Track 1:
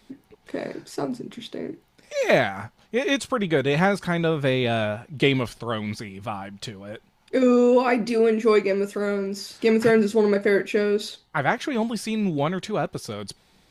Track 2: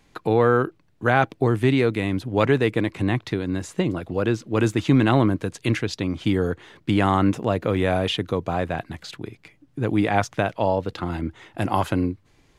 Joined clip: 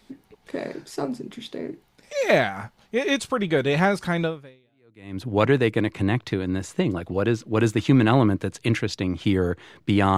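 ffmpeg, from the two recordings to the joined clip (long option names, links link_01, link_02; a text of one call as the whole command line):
ffmpeg -i cue0.wav -i cue1.wav -filter_complex "[0:a]apad=whole_dur=10.17,atrim=end=10.17,atrim=end=5.22,asetpts=PTS-STARTPTS[link_01];[1:a]atrim=start=1.24:end=7.17,asetpts=PTS-STARTPTS[link_02];[link_01][link_02]acrossfade=duration=0.98:curve1=exp:curve2=exp" out.wav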